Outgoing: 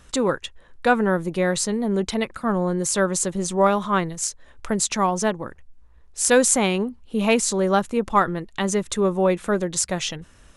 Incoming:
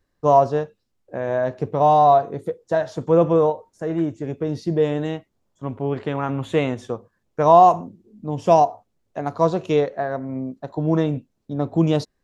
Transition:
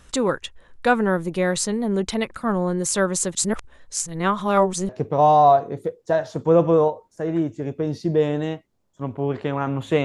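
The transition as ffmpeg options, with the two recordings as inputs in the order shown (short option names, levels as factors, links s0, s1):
-filter_complex "[0:a]apad=whole_dur=10.04,atrim=end=10.04,asplit=2[s0][s1];[s0]atrim=end=3.352[s2];[s1]atrim=start=3.348:end=4.892,asetpts=PTS-STARTPTS,areverse[s3];[1:a]atrim=start=1.508:end=6.66[s4];[s2][s3]acrossfade=d=0.004:c1=hsin:c2=hsin[s5];[s5][s4]acrossfade=d=0.004:c1=hsin:c2=hsin"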